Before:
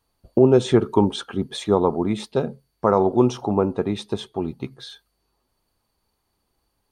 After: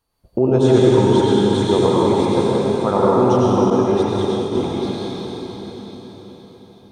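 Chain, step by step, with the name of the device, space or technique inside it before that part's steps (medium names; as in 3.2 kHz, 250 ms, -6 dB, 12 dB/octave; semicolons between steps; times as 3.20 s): cathedral (reverberation RT60 5.2 s, pre-delay 82 ms, DRR -7.5 dB); 3.70–4.55 s: expander -13 dBFS; trim -2.5 dB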